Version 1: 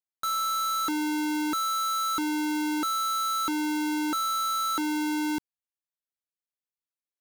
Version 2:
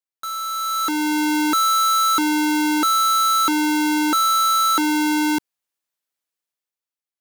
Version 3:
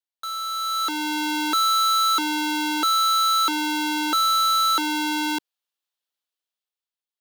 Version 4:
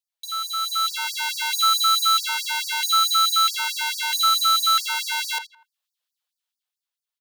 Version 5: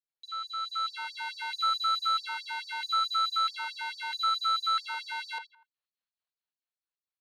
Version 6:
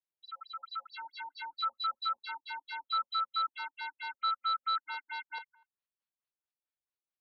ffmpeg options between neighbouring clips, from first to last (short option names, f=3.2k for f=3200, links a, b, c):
-af "lowshelf=f=150:g=-11,dynaudnorm=f=100:g=17:m=10.5dB"
-filter_complex "[0:a]acrossover=split=330 3200:gain=0.224 1 0.0891[a][b][c];[a][b][c]amix=inputs=3:normalize=0,aexciter=amount=5.9:drive=3.7:freq=3.1k,volume=-2.5dB"
-filter_complex "[0:a]asplit=2[a][b];[b]adelay=82,lowpass=f=2.1k:p=1,volume=-6dB,asplit=2[c][d];[d]adelay=82,lowpass=f=2.1k:p=1,volume=0.35,asplit=2[e][f];[f]adelay=82,lowpass=f=2.1k:p=1,volume=0.35,asplit=2[g][h];[h]adelay=82,lowpass=f=2.1k:p=1,volume=0.35[i];[c][e][g][i]amix=inputs=4:normalize=0[j];[a][j]amix=inputs=2:normalize=0,afftfilt=real='re*gte(b*sr/1024,430*pow(4500/430,0.5+0.5*sin(2*PI*4.6*pts/sr)))':imag='im*gte(b*sr/1024,430*pow(4500/430,0.5+0.5*sin(2*PI*4.6*pts/sr)))':win_size=1024:overlap=0.75,volume=3.5dB"
-filter_complex "[0:a]acrossover=split=2200|2800[a][b][c];[b]asoftclip=type=tanh:threshold=-39dB[d];[c]bandpass=f=4.2k:t=q:w=9.8:csg=0[e];[a][d][e]amix=inputs=3:normalize=0,volume=-7dB"
-af "afftfilt=real='re*lt(b*sr/1024,910*pow(5900/910,0.5+0.5*sin(2*PI*4.5*pts/sr)))':imag='im*lt(b*sr/1024,910*pow(5900/910,0.5+0.5*sin(2*PI*4.5*pts/sr)))':win_size=1024:overlap=0.75,volume=-3.5dB"